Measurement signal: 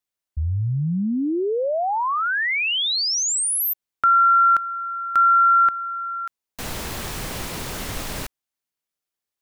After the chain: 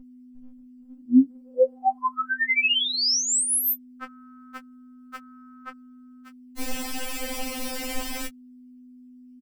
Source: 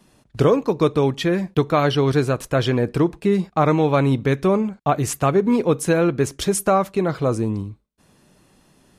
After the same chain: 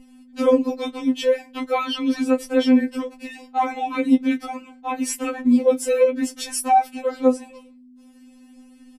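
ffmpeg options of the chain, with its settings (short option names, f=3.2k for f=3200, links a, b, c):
-filter_complex "[0:a]asplit=2[a][b];[b]adelay=12,volume=-6dB[c];[a][c]amix=inputs=2:normalize=0,aeval=exprs='val(0)+0.0126*(sin(2*PI*50*n/s)+sin(2*PI*2*50*n/s)/2+sin(2*PI*3*50*n/s)/3+sin(2*PI*4*50*n/s)/4+sin(2*PI*5*50*n/s)/5)':c=same,afftfilt=real='re*3.46*eq(mod(b,12),0)':imag='im*3.46*eq(mod(b,12),0)':win_size=2048:overlap=0.75"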